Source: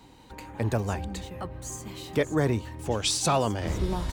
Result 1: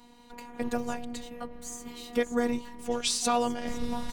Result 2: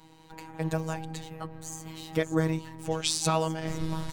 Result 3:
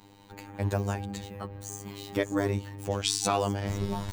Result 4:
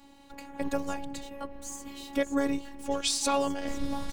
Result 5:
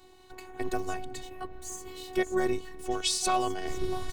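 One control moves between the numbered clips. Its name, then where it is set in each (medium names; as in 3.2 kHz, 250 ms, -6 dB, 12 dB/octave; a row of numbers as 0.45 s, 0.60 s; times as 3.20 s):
robot voice, frequency: 240 Hz, 160 Hz, 100 Hz, 280 Hz, 370 Hz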